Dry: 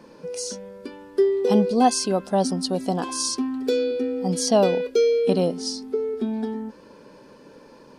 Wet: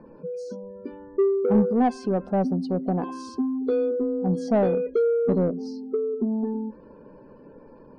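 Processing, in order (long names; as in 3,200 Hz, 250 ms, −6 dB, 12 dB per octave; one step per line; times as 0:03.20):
gate on every frequency bin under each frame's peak −25 dB strong
spectral tilt −4.5 dB per octave
mid-hump overdrive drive 10 dB, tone 1,700 Hz, clips at −9 dBFS
on a send: convolution reverb RT60 0.55 s, pre-delay 4 ms, DRR 24 dB
on the sum: level −6.5 dB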